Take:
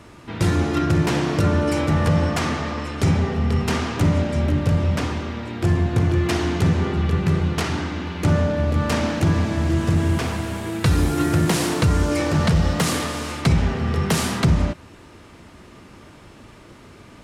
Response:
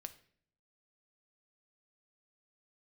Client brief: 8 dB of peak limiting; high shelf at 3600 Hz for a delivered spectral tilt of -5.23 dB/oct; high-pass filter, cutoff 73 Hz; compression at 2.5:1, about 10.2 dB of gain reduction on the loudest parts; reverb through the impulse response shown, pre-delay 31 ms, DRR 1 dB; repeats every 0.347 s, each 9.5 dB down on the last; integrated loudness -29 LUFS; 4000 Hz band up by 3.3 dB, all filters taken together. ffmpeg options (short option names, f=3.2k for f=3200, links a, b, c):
-filter_complex "[0:a]highpass=73,highshelf=f=3.6k:g=-3.5,equalizer=f=4k:t=o:g=6.5,acompressor=threshold=-30dB:ratio=2.5,alimiter=limit=-22.5dB:level=0:latency=1,aecho=1:1:347|694|1041|1388:0.335|0.111|0.0365|0.012,asplit=2[a][b];[1:a]atrim=start_sample=2205,adelay=31[c];[b][c]afir=irnorm=-1:irlink=0,volume=3.5dB[d];[a][d]amix=inputs=2:normalize=0"